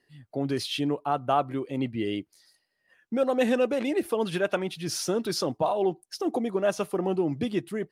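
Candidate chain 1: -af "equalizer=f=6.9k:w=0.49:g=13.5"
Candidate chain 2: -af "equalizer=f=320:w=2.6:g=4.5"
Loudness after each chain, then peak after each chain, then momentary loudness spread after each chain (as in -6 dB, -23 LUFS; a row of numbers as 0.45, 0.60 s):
-25.5, -26.5 LUFS; -8.0, -11.5 dBFS; 10, 6 LU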